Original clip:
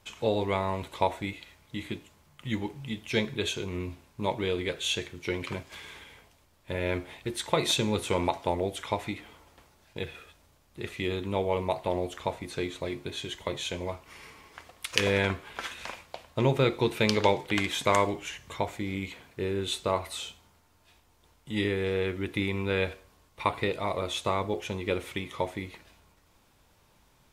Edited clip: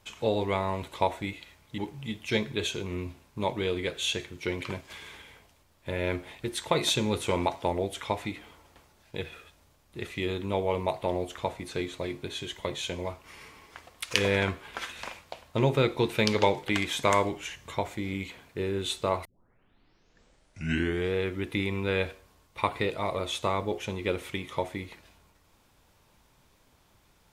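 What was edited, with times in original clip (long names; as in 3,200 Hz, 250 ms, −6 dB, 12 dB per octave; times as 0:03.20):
0:01.78–0:02.60: remove
0:20.07: tape start 1.89 s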